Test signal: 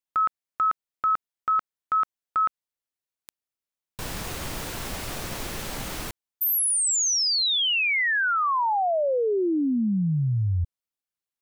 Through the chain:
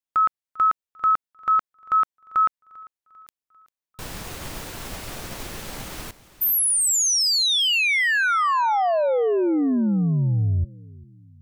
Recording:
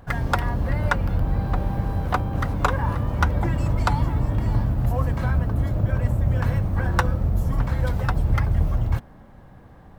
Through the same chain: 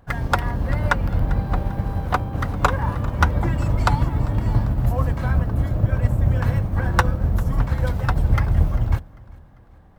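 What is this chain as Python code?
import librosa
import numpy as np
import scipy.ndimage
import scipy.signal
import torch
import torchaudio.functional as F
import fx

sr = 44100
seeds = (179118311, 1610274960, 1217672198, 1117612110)

y = fx.echo_feedback(x, sr, ms=396, feedback_pct=48, wet_db=-17.0)
y = fx.upward_expand(y, sr, threshold_db=-35.0, expansion=1.5)
y = F.gain(torch.from_numpy(y), 4.0).numpy()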